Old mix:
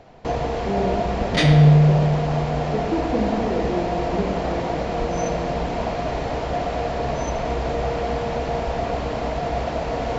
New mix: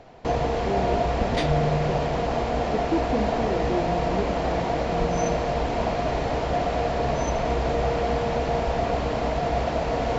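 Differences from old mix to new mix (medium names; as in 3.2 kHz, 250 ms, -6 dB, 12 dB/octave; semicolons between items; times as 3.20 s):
second sound -6.5 dB; reverb: off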